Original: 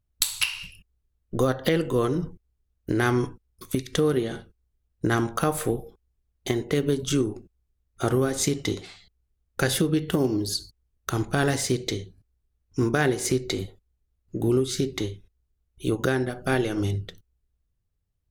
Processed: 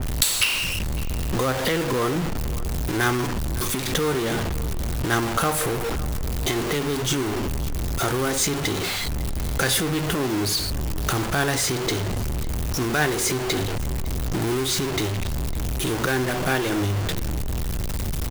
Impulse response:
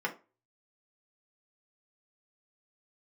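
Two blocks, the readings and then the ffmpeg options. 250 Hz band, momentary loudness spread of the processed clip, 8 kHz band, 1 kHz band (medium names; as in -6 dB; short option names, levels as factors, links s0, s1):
0.0 dB, 7 LU, +6.5 dB, +5.5 dB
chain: -filter_complex "[0:a]aeval=exprs='val(0)+0.5*0.0891*sgn(val(0))':c=same,acrossover=split=720|1200[s0][s1][s2];[s0]alimiter=limit=0.1:level=0:latency=1:release=193[s3];[s3][s1][s2]amix=inputs=3:normalize=0,acrusher=bits=3:mode=log:mix=0:aa=0.000001,asplit=2[s4][s5];[s5]adelay=553.9,volume=0.141,highshelf=f=4000:g=-12.5[s6];[s4][s6]amix=inputs=2:normalize=0,adynamicequalizer=threshold=0.0178:dfrequency=2800:dqfactor=0.7:tfrequency=2800:tqfactor=0.7:attack=5:release=100:ratio=0.375:range=1.5:mode=cutabove:tftype=highshelf,volume=1.12"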